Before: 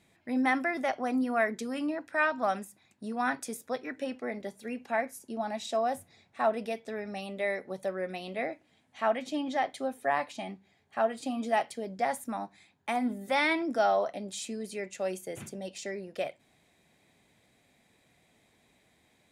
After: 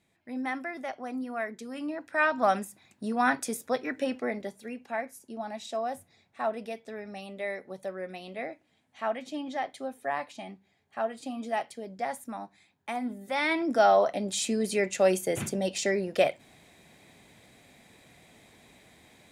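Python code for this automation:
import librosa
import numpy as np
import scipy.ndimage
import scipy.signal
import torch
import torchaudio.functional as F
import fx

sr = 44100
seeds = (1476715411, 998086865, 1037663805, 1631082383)

y = fx.gain(x, sr, db=fx.line((1.59, -6.0), (2.47, 5.0), (4.22, 5.0), (4.79, -3.0), (13.33, -3.0), (13.71, 4.0), (14.72, 10.0)))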